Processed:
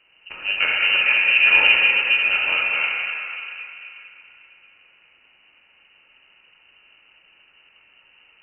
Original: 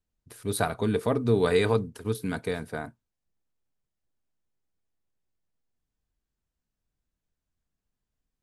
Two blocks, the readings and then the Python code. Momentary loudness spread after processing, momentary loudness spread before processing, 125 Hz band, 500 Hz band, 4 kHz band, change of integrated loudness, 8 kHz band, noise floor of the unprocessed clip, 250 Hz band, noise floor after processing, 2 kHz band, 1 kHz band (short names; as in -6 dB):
18 LU, 14 LU, under -20 dB, -11.5 dB, +20.0 dB, +11.5 dB, under -35 dB, under -85 dBFS, under -15 dB, -57 dBFS, +22.5 dB, +4.0 dB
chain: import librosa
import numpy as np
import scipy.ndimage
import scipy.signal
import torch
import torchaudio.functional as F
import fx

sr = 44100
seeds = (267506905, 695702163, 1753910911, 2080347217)

y = fx.bin_compress(x, sr, power=0.6)
y = fx.rev_plate(y, sr, seeds[0], rt60_s=3.3, hf_ratio=0.65, predelay_ms=0, drr_db=-4.0)
y = fx.freq_invert(y, sr, carrier_hz=2900)